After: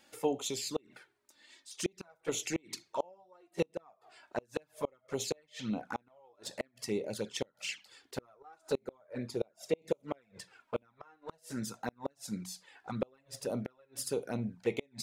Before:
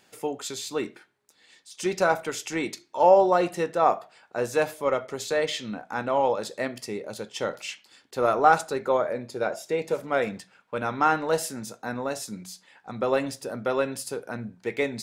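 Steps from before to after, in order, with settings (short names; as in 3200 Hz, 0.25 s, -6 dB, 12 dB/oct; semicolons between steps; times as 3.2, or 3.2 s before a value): flipped gate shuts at -17 dBFS, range -36 dB; envelope flanger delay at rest 3.8 ms, full sweep at -30 dBFS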